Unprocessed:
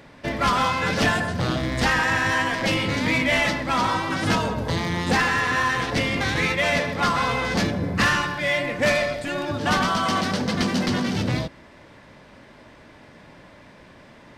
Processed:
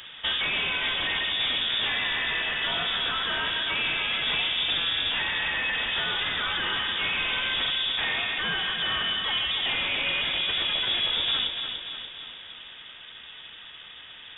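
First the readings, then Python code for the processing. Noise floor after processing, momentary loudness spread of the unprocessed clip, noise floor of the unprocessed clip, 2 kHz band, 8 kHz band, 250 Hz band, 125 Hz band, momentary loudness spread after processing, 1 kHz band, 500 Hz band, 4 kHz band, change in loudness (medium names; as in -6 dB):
-45 dBFS, 5 LU, -49 dBFS, -3.5 dB, under -40 dB, -19.0 dB, -19.0 dB, 17 LU, -11.0 dB, -14.5 dB, +6.5 dB, -2.5 dB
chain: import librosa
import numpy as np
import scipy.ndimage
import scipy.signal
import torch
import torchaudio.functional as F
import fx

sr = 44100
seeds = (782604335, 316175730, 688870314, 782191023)

y = np.clip(10.0 ** (26.5 / 20.0) * x, -1.0, 1.0) / 10.0 ** (26.5 / 20.0)
y = fx.rider(y, sr, range_db=10, speed_s=0.5)
y = fx.echo_feedback(y, sr, ms=291, feedback_pct=57, wet_db=-7.0)
y = fx.freq_invert(y, sr, carrier_hz=3600)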